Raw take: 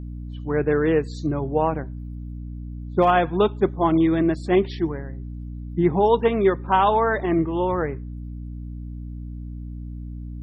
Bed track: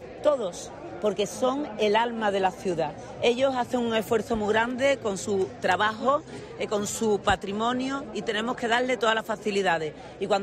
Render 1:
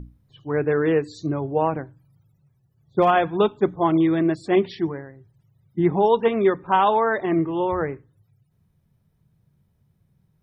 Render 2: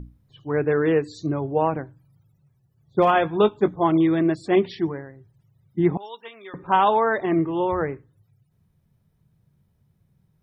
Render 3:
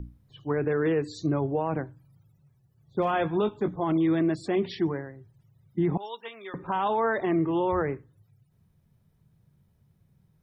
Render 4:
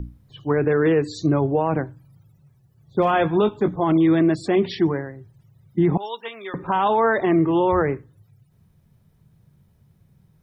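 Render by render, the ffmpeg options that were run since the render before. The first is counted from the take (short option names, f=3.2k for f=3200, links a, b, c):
-af "bandreject=f=60:t=h:w=6,bandreject=f=120:t=h:w=6,bandreject=f=180:t=h:w=6,bandreject=f=240:t=h:w=6,bandreject=f=300:t=h:w=6"
-filter_complex "[0:a]asettb=1/sr,asplit=3[a][b][c];[a]atrim=end=3.034[d];[b]atrim=start=3.03:end=3.71,asetpts=PTS-STARTPTS,afade=t=in:d=0.004:c=qsin,afade=t=out:st=0.676:d=0.004:c=qsin,asplit=2[e][f];[f]adelay=19,volume=-11dB[g];[e][g]amix=inputs=2:normalize=0,atrim=end_sample=29988[h];[c]atrim=start=3.706[i];[d][h]acrossfade=d=0.004:c1=hsin:c2=qsin[j];[j][i]acrossfade=d=0.004:c1=qsin:c2=hsin,asettb=1/sr,asplit=3[k][l][m];[k]atrim=end=5.974[n];[l]atrim=start=5.97:end=6.54,asetpts=PTS-STARTPTS,afade=t=in:d=0.004:c=qsin,afade=t=out:st=0.566:d=0.004:c=qsin,aderivative[o];[m]atrim=start=6.536[p];[n][o]acrossfade=d=0.004:c1=hsin:c2=qsin[q];[q][p]acrossfade=d=0.004:c1=qsin:c2=hsin"
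-filter_complex "[0:a]acrossover=split=260[a][b];[b]acompressor=threshold=-21dB:ratio=2[c];[a][c]amix=inputs=2:normalize=0,alimiter=limit=-17.5dB:level=0:latency=1:release=27"
-af "volume=7dB"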